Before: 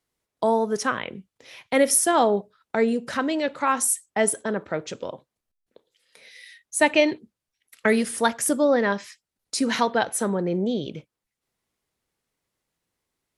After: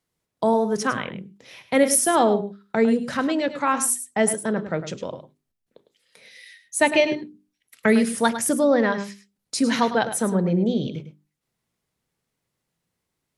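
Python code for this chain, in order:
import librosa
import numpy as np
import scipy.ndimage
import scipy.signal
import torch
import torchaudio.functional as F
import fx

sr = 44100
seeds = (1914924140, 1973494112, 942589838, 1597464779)

y = fx.peak_eq(x, sr, hz=150.0, db=8.0, octaves=1.4)
y = fx.hum_notches(y, sr, base_hz=50, count=8)
y = y + 10.0 ** (-11.5 / 20.0) * np.pad(y, (int(104 * sr / 1000.0), 0))[:len(y)]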